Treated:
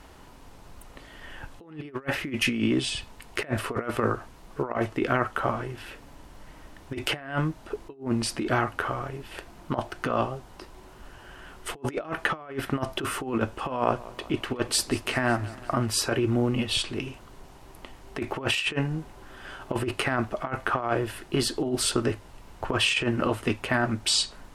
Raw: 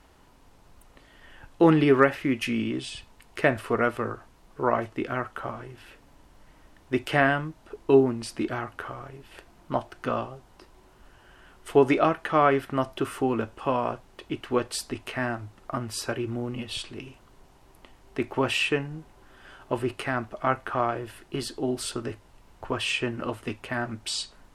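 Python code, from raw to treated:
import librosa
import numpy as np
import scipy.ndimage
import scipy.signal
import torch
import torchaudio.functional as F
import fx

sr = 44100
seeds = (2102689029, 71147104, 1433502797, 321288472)

y = fx.over_compress(x, sr, threshold_db=-29.0, ratio=-0.5)
y = fx.echo_warbled(y, sr, ms=184, feedback_pct=66, rate_hz=2.8, cents=66, wet_db=-19.0, at=(13.74, 15.86))
y = F.gain(torch.from_numpy(y), 3.0).numpy()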